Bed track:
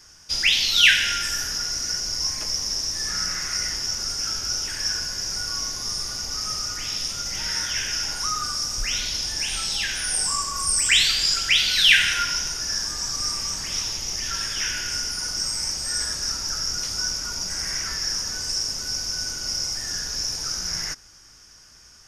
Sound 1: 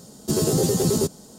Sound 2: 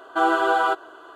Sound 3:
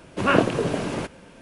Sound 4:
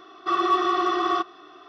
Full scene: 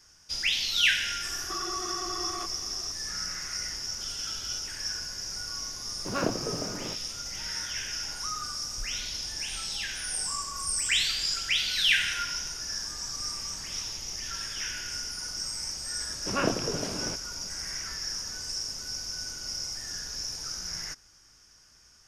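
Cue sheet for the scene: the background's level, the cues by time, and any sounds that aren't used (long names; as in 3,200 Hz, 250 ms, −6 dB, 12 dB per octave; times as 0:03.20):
bed track −8 dB
0:01.24: mix in 4 −2.5 dB + downward compressor, threshold −32 dBFS
0:03.85: mix in 2 −6.5 dB + Butterworth high-pass 2,500 Hz
0:05.88: mix in 3 −10 dB + running median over 15 samples
0:16.09: mix in 3 −9 dB
not used: 1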